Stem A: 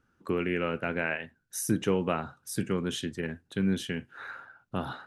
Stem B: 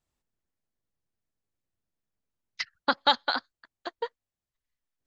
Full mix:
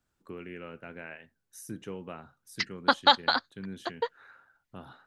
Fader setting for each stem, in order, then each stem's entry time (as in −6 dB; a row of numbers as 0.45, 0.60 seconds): −13.0, +2.0 decibels; 0.00, 0.00 seconds